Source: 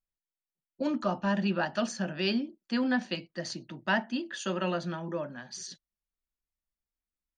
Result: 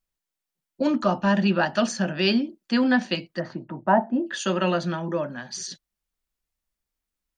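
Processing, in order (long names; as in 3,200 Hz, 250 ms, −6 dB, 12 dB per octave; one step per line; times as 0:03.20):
0:03.39–0:04.26: low-pass with resonance 1,400 Hz → 620 Hz, resonance Q 1.9
level +7.5 dB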